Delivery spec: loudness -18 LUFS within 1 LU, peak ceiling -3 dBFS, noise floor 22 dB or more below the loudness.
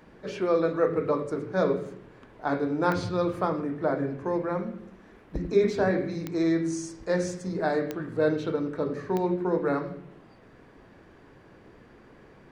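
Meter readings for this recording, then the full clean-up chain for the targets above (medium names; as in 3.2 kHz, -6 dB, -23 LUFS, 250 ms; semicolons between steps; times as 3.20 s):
clicks found 4; loudness -28.0 LUFS; peak level -10.5 dBFS; loudness target -18.0 LUFS
-> de-click; trim +10 dB; peak limiter -3 dBFS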